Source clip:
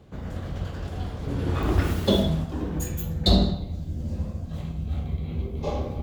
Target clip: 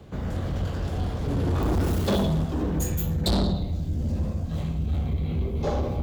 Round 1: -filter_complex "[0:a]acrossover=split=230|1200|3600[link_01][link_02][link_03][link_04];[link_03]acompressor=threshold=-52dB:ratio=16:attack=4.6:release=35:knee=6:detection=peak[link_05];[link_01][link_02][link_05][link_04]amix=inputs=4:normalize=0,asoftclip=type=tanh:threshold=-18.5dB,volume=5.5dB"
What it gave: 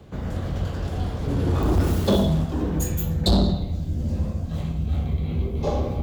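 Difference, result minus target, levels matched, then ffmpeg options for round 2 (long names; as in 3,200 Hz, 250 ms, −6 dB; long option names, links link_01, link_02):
soft clipping: distortion −5 dB
-filter_complex "[0:a]acrossover=split=230|1200|3600[link_01][link_02][link_03][link_04];[link_03]acompressor=threshold=-52dB:ratio=16:attack=4.6:release=35:knee=6:detection=peak[link_05];[link_01][link_02][link_05][link_04]amix=inputs=4:normalize=0,asoftclip=type=tanh:threshold=-25dB,volume=5.5dB"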